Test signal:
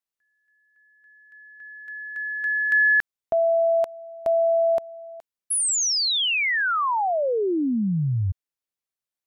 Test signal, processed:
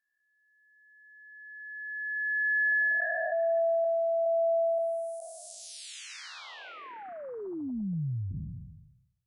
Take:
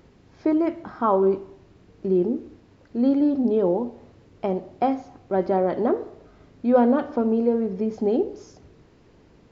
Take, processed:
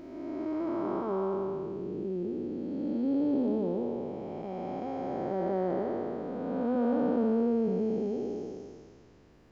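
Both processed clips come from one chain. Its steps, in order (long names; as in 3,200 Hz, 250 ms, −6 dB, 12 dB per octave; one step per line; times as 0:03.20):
spectrum smeared in time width 708 ms
level −2.5 dB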